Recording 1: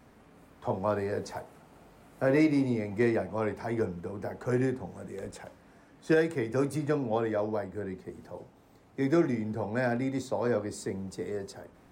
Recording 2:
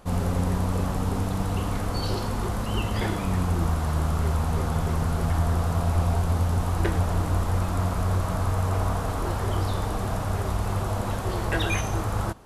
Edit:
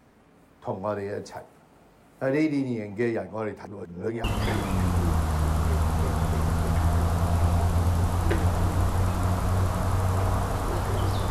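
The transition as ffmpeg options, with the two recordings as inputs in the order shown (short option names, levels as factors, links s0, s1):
-filter_complex "[0:a]apad=whole_dur=11.3,atrim=end=11.3,asplit=2[s0][s1];[s0]atrim=end=3.652[s2];[s1]atrim=start=3.648:end=4.242,asetpts=PTS-STARTPTS,areverse[s3];[1:a]atrim=start=2.778:end=9.84[s4];[s2][s3]acrossfade=d=0.004:c1=hsin:c2=hsin[s5];[s5][s4]acrossfade=d=0.004:c1=hsin:c2=hsin"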